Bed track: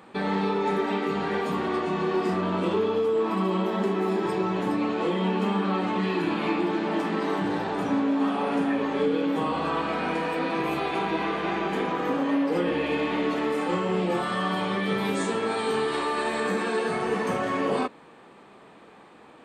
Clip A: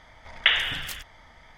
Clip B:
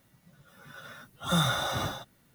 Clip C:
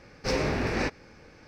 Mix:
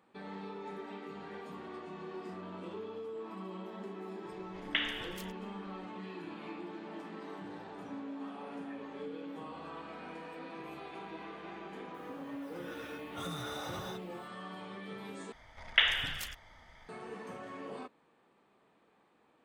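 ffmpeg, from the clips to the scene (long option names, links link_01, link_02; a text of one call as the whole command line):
ffmpeg -i bed.wav -i cue0.wav -i cue1.wav -filter_complex "[1:a]asplit=2[link_01][link_02];[0:a]volume=-18.5dB[link_03];[2:a]acompressor=threshold=-35dB:ratio=6:attack=3.2:release=140:knee=1:detection=peak[link_04];[link_03]asplit=2[link_05][link_06];[link_05]atrim=end=15.324[link_07];[link_02]atrim=end=1.57,asetpts=PTS-STARTPTS,volume=-5.5dB[link_08];[link_06]atrim=start=16.886[link_09];[link_01]atrim=end=1.57,asetpts=PTS-STARTPTS,volume=-12.5dB,afade=type=in:duration=0.004:curve=hsin,afade=type=out:start_time=1.566:duration=0.004:curve=hsin,adelay=189189S[link_10];[link_04]atrim=end=2.34,asetpts=PTS-STARTPTS,volume=-3.5dB,afade=type=in:duration=0.004:curve=hsin,afade=type=out:start_time=2.336:duration=0.004:curve=hsin,adelay=11940[link_11];[link_07][link_08]acrossfade=duration=0.004:curve1=hsin:curve2=hsin[link_12];[link_12][link_09]acrossfade=duration=0.004:curve1=hsin:curve2=hsin[link_13];[link_13][link_10][link_11]amix=inputs=3:normalize=0" out.wav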